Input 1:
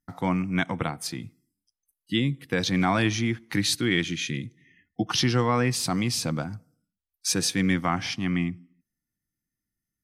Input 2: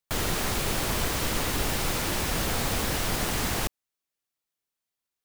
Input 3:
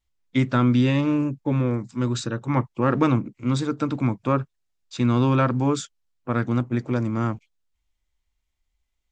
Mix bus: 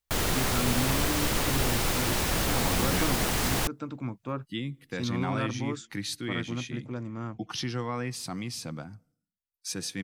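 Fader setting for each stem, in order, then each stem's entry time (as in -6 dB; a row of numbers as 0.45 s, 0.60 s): -9.5 dB, +0.5 dB, -12.0 dB; 2.40 s, 0.00 s, 0.00 s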